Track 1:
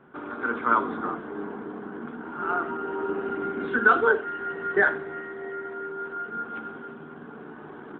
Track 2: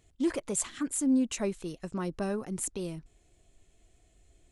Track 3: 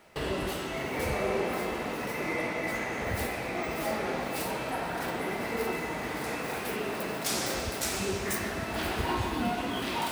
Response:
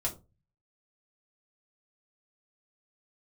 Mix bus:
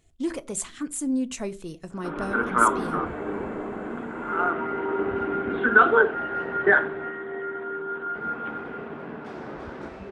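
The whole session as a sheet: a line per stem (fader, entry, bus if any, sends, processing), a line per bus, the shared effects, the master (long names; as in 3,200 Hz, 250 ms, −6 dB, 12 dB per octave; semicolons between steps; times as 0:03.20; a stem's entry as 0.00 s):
+2.5 dB, 1.90 s, no send, no echo send, no processing
−1.5 dB, 0.00 s, send −12.5 dB, no echo send, no processing
−7.5 dB, 2.00 s, muted 0:06.75–0:08.15, no send, echo send −3.5 dB, low-pass filter 1,500 Hz 12 dB per octave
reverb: on, RT60 0.30 s, pre-delay 3 ms
echo: single-tap delay 339 ms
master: no processing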